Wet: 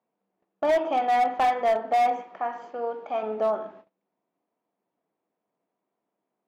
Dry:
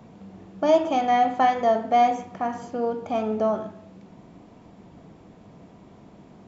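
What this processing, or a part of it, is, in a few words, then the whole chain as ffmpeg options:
walkie-talkie: -filter_complex "[0:a]asettb=1/sr,asplit=3[link_01][link_02][link_03];[link_01]atrim=end=2.214[link_04];[link_02]atrim=start=2.21:end=3.23,asetpts=PTS-STARTPTS,afade=type=in:duration=0.004:curve=qsin,afade=type=out:start_time=1.016:duration=0.004:curve=qsin,lowshelf=frequency=250:gain=-11[link_05];[link_03]atrim=start=3.226[link_06];[link_04][link_05]acrossfade=duration=0.004:curve1=hsin:curve2=qsin[link_07];[link_07][link_06]acrossfade=duration=0.004:curve1=qsin:curve2=hsin,highpass=410,lowpass=2700,asoftclip=type=hard:threshold=-17.5dB,agate=range=-28dB:threshold=-47dB:ratio=16:detection=peak"

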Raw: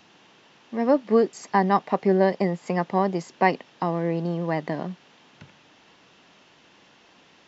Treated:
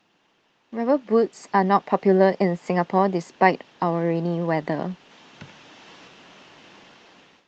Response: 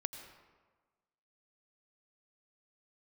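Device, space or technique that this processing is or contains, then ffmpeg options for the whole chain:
video call: -af "highpass=frequency=110:poles=1,dynaudnorm=framelen=670:gausssize=5:maxgain=15.5dB,agate=range=-7dB:threshold=-50dB:ratio=16:detection=peak,volume=-1dB" -ar 48000 -c:a libopus -b:a 32k

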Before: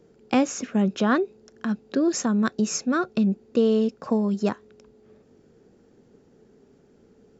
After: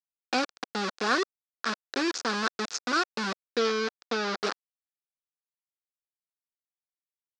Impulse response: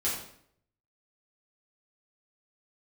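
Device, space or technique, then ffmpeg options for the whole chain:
hand-held game console: -filter_complex "[0:a]acrusher=bits=3:mix=0:aa=0.000001,highpass=500,equalizer=frequency=610:width_type=q:width=4:gain=-8,equalizer=frequency=930:width_type=q:width=4:gain=-6,equalizer=frequency=1400:width_type=q:width=4:gain=3,equalizer=frequency=2100:width_type=q:width=4:gain=-6,equalizer=frequency=3000:width_type=q:width=4:gain=-6,equalizer=frequency=4800:width_type=q:width=4:gain=3,lowpass=frequency=5600:width=0.5412,lowpass=frequency=5600:width=1.3066,asettb=1/sr,asplit=3[link_01][link_02][link_03];[link_01]atrim=end=3.464[link_04];[link_02]atrim=start=3.46:end=4.43,asetpts=PTS-STARTPTS,afade=type=in:duration=0.004:curve=qsin,afade=type=out:start_time=0.966:duration=0.004:curve=qsin,lowpass=frequency=6500:width=0.5412,lowpass=frequency=6500:width=1.3066[link_05];[link_03]atrim=start=4.426[link_06];[link_04][link_05]acrossfade=duration=0.004:curve1=hsin:curve2=qsin[link_07];[link_07][link_06]acrossfade=duration=0.004:curve1=qsin:curve2=hsin"

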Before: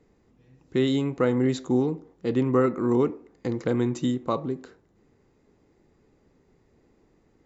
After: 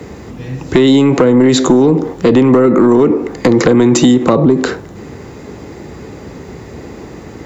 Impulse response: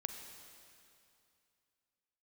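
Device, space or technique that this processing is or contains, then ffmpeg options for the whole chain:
mastering chain: -filter_complex "[0:a]highpass=frequency=53:width=0.5412,highpass=frequency=53:width=1.3066,equalizer=frequency=300:width_type=o:width=1.6:gain=-2,acrossover=split=200|490[link_01][link_02][link_03];[link_01]acompressor=threshold=-46dB:ratio=4[link_04];[link_02]acompressor=threshold=-30dB:ratio=4[link_05];[link_03]acompressor=threshold=-42dB:ratio=4[link_06];[link_04][link_05][link_06]amix=inputs=3:normalize=0,acompressor=threshold=-34dB:ratio=2.5,asoftclip=type=tanh:threshold=-27.5dB,asoftclip=type=hard:threshold=-30.5dB,alimiter=level_in=35dB:limit=-1dB:release=50:level=0:latency=1,volume=-1dB"

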